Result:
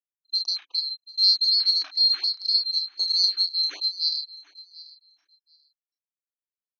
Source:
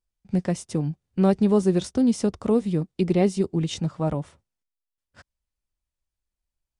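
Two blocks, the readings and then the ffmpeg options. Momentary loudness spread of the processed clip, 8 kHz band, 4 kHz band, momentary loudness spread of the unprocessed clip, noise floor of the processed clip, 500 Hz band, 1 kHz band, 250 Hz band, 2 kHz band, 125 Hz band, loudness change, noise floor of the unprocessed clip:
9 LU, -5.0 dB, +23.0 dB, 8 LU, under -85 dBFS, under -35 dB, under -20 dB, under -40 dB, n/a, under -40 dB, +2.5 dB, under -85 dBFS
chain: -filter_complex "[0:a]afftfilt=real='real(if(lt(b,736),b+184*(1-2*mod(floor(b/184),2)),b),0)':imag='imag(if(lt(b,736),b+184*(1-2*mod(floor(b/184),2)),b),0)':win_size=2048:overlap=0.75,anlmdn=3.98,afftfilt=real='re*between(b*sr/4096,270,6500)':imag='im*between(b*sr/4096,270,6500)':win_size=4096:overlap=0.75,asplit=2[a][b];[b]adelay=32,volume=-3dB[c];[a][c]amix=inputs=2:normalize=0,aecho=1:1:737|1474:0.106|0.0169,afftfilt=real='re*(1-between(b*sr/1024,400*pow(1800/400,0.5+0.5*sin(2*PI*3.9*pts/sr))/1.41,400*pow(1800/400,0.5+0.5*sin(2*PI*3.9*pts/sr))*1.41))':imag='im*(1-between(b*sr/1024,400*pow(1800/400,0.5+0.5*sin(2*PI*3.9*pts/sr))/1.41,400*pow(1800/400,0.5+0.5*sin(2*PI*3.9*pts/sr))*1.41))':win_size=1024:overlap=0.75,volume=-3.5dB"

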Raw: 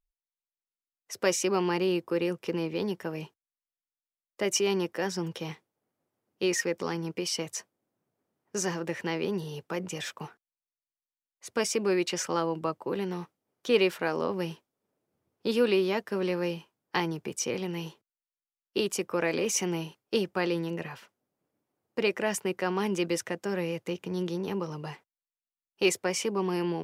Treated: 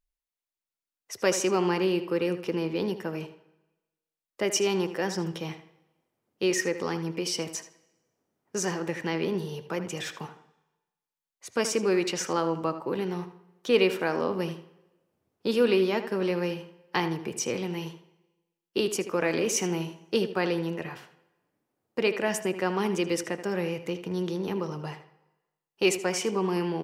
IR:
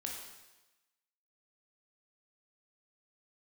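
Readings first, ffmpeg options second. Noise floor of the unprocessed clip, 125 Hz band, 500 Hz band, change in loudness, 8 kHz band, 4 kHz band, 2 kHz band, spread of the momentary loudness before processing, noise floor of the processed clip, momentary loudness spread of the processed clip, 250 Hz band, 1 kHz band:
under -85 dBFS, +2.0 dB, +2.0 dB, +1.5 dB, +0.5 dB, +1.0 dB, +1.5 dB, 12 LU, under -85 dBFS, 12 LU, +2.0 dB, +2.0 dB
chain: -filter_complex "[0:a]asplit=2[a][b];[b]adelay=79,lowpass=f=4.5k:p=1,volume=-11.5dB,asplit=2[c][d];[d]adelay=79,lowpass=f=4.5k:p=1,volume=0.29,asplit=2[e][f];[f]adelay=79,lowpass=f=4.5k:p=1,volume=0.29[g];[a][c][e][g]amix=inputs=4:normalize=0,asplit=2[h][i];[1:a]atrim=start_sample=2205,highshelf=f=3.6k:g=-10.5[j];[i][j]afir=irnorm=-1:irlink=0,volume=-10.5dB[k];[h][k]amix=inputs=2:normalize=0"

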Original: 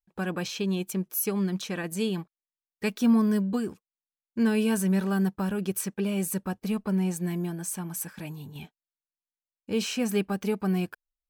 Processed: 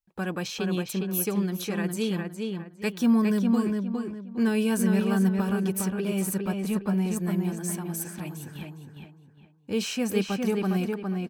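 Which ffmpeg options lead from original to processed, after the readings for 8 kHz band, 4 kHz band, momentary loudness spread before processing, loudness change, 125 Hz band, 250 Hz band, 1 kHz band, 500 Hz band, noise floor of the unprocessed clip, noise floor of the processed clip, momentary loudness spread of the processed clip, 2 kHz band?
+0.5 dB, +1.0 dB, 11 LU, +1.0 dB, +2.0 dB, +1.5 dB, +1.5 dB, +1.5 dB, under -85 dBFS, -53 dBFS, 11 LU, +1.5 dB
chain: -filter_complex "[0:a]asplit=2[a][b];[b]adelay=409,lowpass=f=3.4k:p=1,volume=-3.5dB,asplit=2[c][d];[d]adelay=409,lowpass=f=3.4k:p=1,volume=0.32,asplit=2[e][f];[f]adelay=409,lowpass=f=3.4k:p=1,volume=0.32,asplit=2[g][h];[h]adelay=409,lowpass=f=3.4k:p=1,volume=0.32[i];[a][c][e][g][i]amix=inputs=5:normalize=0"

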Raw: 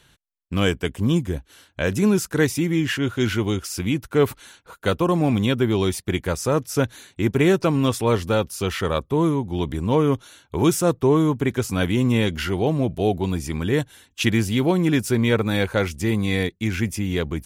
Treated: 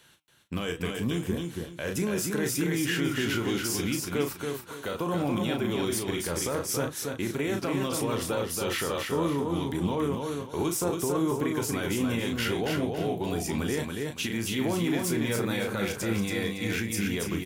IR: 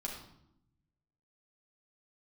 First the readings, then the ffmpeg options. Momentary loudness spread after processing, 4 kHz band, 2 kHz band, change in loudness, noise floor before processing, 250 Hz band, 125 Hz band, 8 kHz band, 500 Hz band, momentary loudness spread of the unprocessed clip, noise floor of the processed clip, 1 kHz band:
5 LU, -4.0 dB, -5.5 dB, -7.5 dB, -62 dBFS, -7.5 dB, -10.0 dB, -0.5 dB, -8.0 dB, 6 LU, -44 dBFS, -6.5 dB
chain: -filter_complex "[0:a]highpass=f=210:p=1,highshelf=f=12k:g=7.5,asplit=2[a][b];[b]adelay=35,volume=-8dB[c];[a][c]amix=inputs=2:normalize=0,acompressor=threshold=-20dB:ratio=6,alimiter=limit=-18.5dB:level=0:latency=1:release=32,asplit=2[d][e];[e]aecho=0:1:280|560|840|1120:0.631|0.183|0.0531|0.0154[f];[d][f]amix=inputs=2:normalize=0,flanger=delay=3.5:depth=9.8:regen=81:speed=0.7:shape=triangular,volume=2.5dB"

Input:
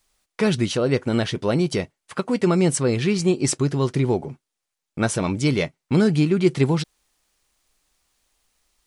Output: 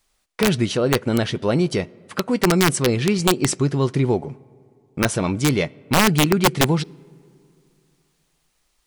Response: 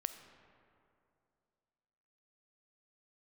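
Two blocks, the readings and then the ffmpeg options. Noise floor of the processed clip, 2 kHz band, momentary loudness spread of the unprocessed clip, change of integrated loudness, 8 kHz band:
-68 dBFS, +5.5 dB, 8 LU, +1.5 dB, +3.5 dB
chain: -filter_complex "[0:a]asplit=2[a][b];[b]lowpass=5.3k[c];[1:a]atrim=start_sample=2205[d];[c][d]afir=irnorm=-1:irlink=0,volume=-13dB[e];[a][e]amix=inputs=2:normalize=0,aeval=exprs='(mod(2.51*val(0)+1,2)-1)/2.51':c=same"

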